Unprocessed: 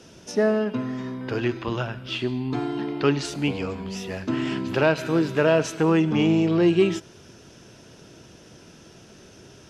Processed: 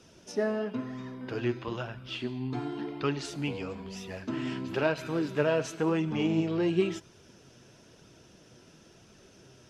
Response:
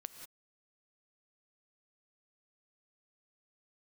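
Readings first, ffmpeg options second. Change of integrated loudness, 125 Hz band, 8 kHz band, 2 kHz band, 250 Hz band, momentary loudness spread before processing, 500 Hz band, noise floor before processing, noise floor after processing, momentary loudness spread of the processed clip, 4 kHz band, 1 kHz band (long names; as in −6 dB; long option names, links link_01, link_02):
−8.0 dB, −8.0 dB, −7.5 dB, −7.5 dB, −8.0 dB, 11 LU, −7.5 dB, −49 dBFS, −57 dBFS, 10 LU, −7.5 dB, −7.5 dB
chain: -af "flanger=delay=0.8:depth=7.5:regen=58:speed=0.99:shape=sinusoidal,volume=-3.5dB"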